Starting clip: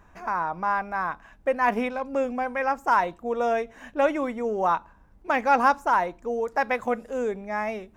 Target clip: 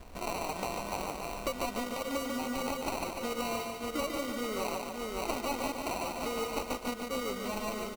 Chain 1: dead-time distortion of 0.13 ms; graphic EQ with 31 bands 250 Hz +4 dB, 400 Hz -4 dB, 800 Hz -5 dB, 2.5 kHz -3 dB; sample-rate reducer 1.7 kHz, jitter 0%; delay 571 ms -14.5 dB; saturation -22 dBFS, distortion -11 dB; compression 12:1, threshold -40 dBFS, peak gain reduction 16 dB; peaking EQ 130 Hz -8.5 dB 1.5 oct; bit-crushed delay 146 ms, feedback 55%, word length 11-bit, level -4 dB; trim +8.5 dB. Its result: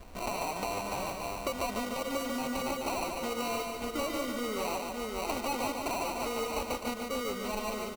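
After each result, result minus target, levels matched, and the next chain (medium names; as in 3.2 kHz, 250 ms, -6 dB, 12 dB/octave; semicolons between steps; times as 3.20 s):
saturation: distortion +11 dB; dead-time distortion: distortion -7 dB
dead-time distortion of 0.13 ms; graphic EQ with 31 bands 250 Hz +4 dB, 400 Hz -4 dB, 800 Hz -5 dB, 2.5 kHz -3 dB; sample-rate reducer 1.7 kHz, jitter 0%; delay 571 ms -14.5 dB; saturation -13 dBFS, distortion -21 dB; compression 12:1, threshold -40 dBFS, peak gain reduction 21.5 dB; peaking EQ 130 Hz -8.5 dB 1.5 oct; bit-crushed delay 146 ms, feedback 55%, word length 11-bit, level -4 dB; trim +8.5 dB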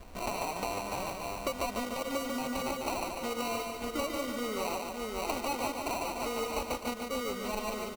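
dead-time distortion: distortion -7 dB
dead-time distortion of 0.26 ms; graphic EQ with 31 bands 250 Hz +4 dB, 400 Hz -4 dB, 800 Hz -5 dB, 2.5 kHz -3 dB; sample-rate reducer 1.7 kHz, jitter 0%; delay 571 ms -14.5 dB; saturation -13 dBFS, distortion -21 dB; compression 12:1, threshold -40 dBFS, peak gain reduction 21.5 dB; peaking EQ 130 Hz -8.5 dB 1.5 oct; bit-crushed delay 146 ms, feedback 55%, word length 11-bit, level -4 dB; trim +8.5 dB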